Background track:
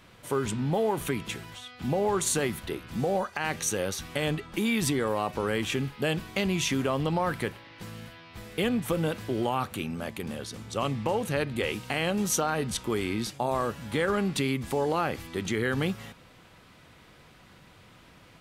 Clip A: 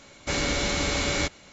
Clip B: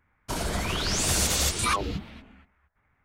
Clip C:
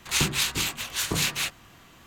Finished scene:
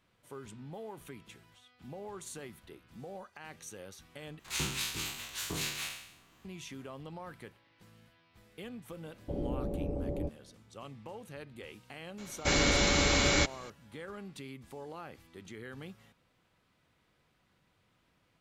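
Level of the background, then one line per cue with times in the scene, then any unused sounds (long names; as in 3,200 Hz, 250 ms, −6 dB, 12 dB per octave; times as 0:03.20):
background track −18 dB
0:04.39: overwrite with C −13 dB + peak hold with a decay on every bin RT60 0.78 s
0:09.01: mix in A −5.5 dB + inverse Chebyshev low-pass filter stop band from 1,600 Hz, stop band 50 dB
0:12.18: mix in A −0.5 dB
not used: B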